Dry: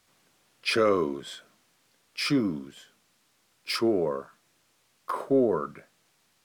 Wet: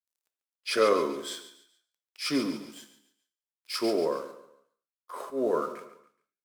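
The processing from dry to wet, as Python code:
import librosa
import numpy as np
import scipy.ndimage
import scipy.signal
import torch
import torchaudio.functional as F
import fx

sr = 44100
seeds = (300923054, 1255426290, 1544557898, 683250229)

p1 = np.sign(x) * np.maximum(np.abs(x) - 10.0 ** (-56.5 / 20.0), 0.0)
p2 = fx.bass_treble(p1, sr, bass_db=-13, treble_db=7)
p3 = p2 + fx.echo_feedback(p2, sr, ms=141, feedback_pct=38, wet_db=-15.0, dry=0)
p4 = fx.auto_swell(p3, sr, attack_ms=186.0)
p5 = fx.hum_notches(p4, sr, base_hz=50, count=2)
p6 = fx.rev_gated(p5, sr, seeds[0], gate_ms=250, shape='falling', drr_db=9.5)
y = p6 * librosa.db_to_amplitude(1.0)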